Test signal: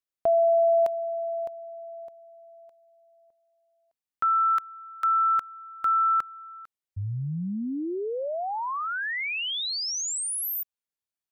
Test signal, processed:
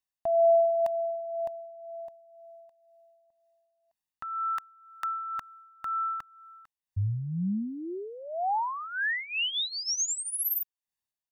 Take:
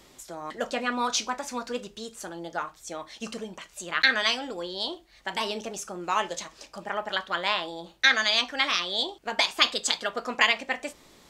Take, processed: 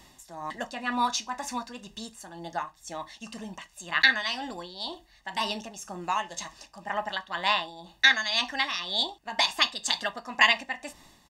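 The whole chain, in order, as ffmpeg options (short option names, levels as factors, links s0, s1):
-af "aecho=1:1:1.1:0.64,tremolo=f=2:d=0.58"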